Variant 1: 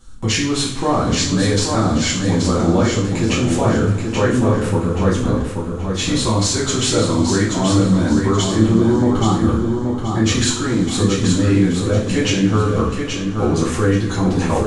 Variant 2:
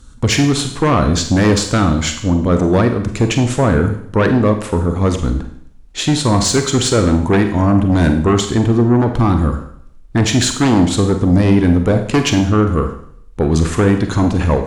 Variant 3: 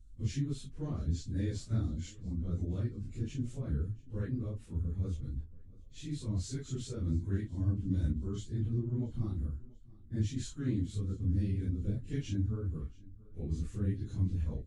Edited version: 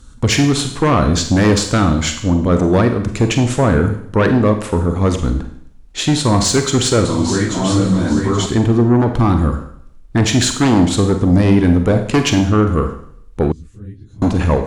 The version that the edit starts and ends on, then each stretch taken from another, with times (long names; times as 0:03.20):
2
0:07.05–0:08.46: punch in from 1
0:13.52–0:14.22: punch in from 3